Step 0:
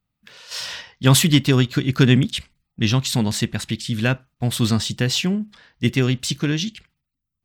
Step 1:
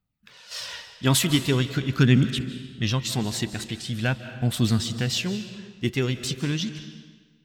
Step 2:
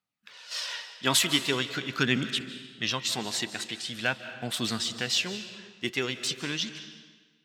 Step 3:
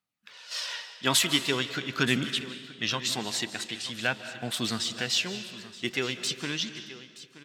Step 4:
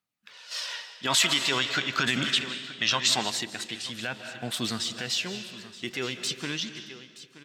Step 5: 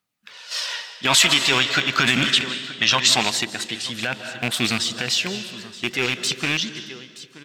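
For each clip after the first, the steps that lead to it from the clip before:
phase shifter 0.44 Hz, delay 3.2 ms, feedback 35%; comb and all-pass reverb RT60 1.4 s, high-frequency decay 0.9×, pre-delay 115 ms, DRR 11 dB; level −5.5 dB
meter weighting curve A
single-tap delay 925 ms −16.5 dB
brickwall limiter −18 dBFS, peak gain reduction 9.5 dB; gain on a spectral selection 0:01.07–0:03.30, 520–8,400 Hz +7 dB
loose part that buzzes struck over −36 dBFS, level −18 dBFS; level +7 dB

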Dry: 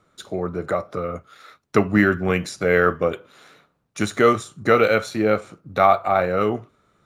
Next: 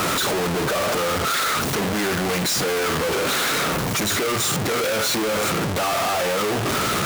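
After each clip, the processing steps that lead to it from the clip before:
sign of each sample alone
low-shelf EQ 71 Hz −11.5 dB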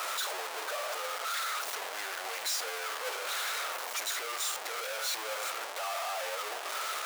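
high-pass filter 590 Hz 24 dB per octave
brickwall limiter −19.5 dBFS, peak gain reduction 7 dB
level −6 dB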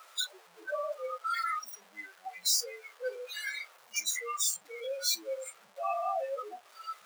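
noise reduction from a noise print of the clip's start 28 dB
level +6.5 dB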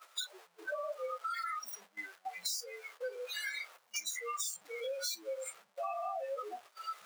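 noise gate −54 dBFS, range −13 dB
downward compressor 12 to 1, threshold −36 dBFS, peak gain reduction 12 dB
level +1 dB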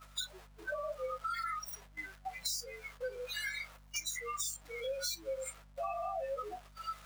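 mains hum 50 Hz, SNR 20 dB
on a send at −15.5 dB: convolution reverb RT60 0.10 s, pre-delay 3 ms

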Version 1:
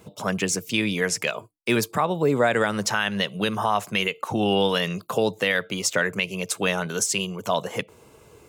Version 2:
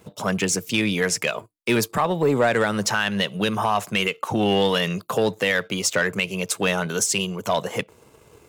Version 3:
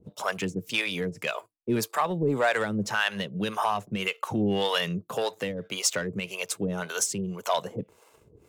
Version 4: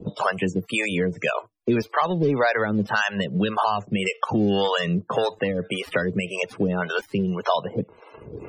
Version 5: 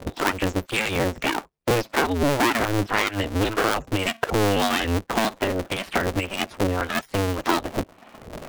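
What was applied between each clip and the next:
leveller curve on the samples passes 1; level −1 dB
two-band tremolo in antiphase 1.8 Hz, depth 100%, crossover 470 Hz; level −1.5 dB
gap after every zero crossing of 0.089 ms; spectral peaks only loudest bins 64; multiband upward and downward compressor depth 70%; level +5.5 dB
sub-harmonics by changed cycles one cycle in 2, inverted

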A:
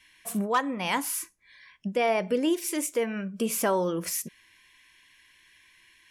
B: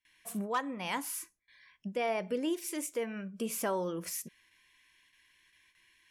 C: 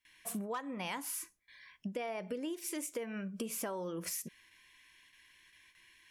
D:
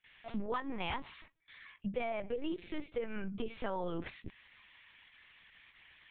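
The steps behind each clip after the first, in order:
noise gate with hold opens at −49 dBFS; level −7.5 dB
downward compressor 12 to 1, threshold −39 dBFS, peak gain reduction 12.5 dB; level +3.5 dB
linear-prediction vocoder at 8 kHz pitch kept; level +2.5 dB

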